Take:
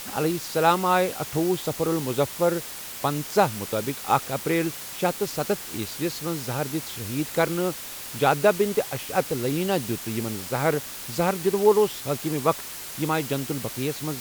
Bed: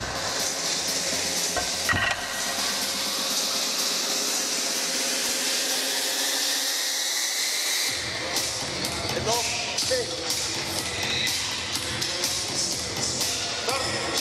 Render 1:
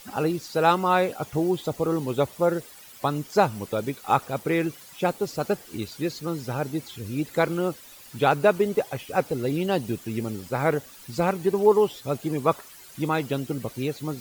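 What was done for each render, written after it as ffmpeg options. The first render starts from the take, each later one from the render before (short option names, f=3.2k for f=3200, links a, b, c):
-af "afftdn=nr=13:nf=-37"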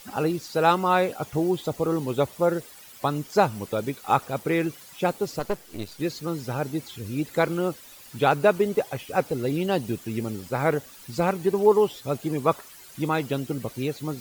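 -filter_complex "[0:a]asettb=1/sr,asplit=3[a][b][c];[a]atrim=end=5.394[d];[b]atrim=start=5.39:end=6,asetpts=PTS-STARTPTS,afade=t=in:d=0.004:c=qsin,afade=t=out:st=0.606:d=0.004:c=qsin,aeval=exprs='if(lt(val(0),0),0.251*val(0),val(0))':c=same[e];[c]atrim=start=5.996[f];[d][e]acrossfade=d=0.004:c1=hsin:c2=qsin[g];[g][f]acrossfade=d=0.004:c1=qsin:c2=hsin"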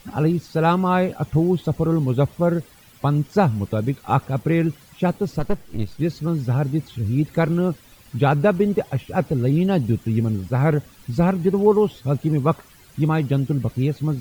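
-af "bass=f=250:g=14,treble=f=4k:g=-6"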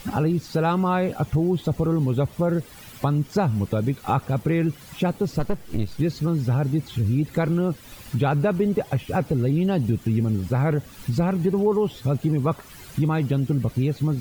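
-filter_complex "[0:a]asplit=2[a][b];[b]alimiter=limit=-15.5dB:level=0:latency=1:release=11,volume=2dB[c];[a][c]amix=inputs=2:normalize=0,acompressor=threshold=-24dB:ratio=2"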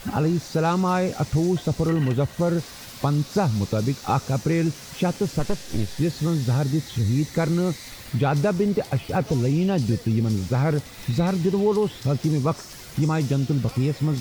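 -filter_complex "[1:a]volume=-16dB[a];[0:a][a]amix=inputs=2:normalize=0"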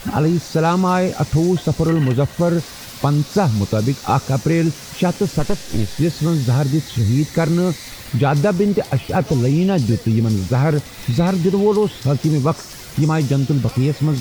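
-af "volume=5.5dB"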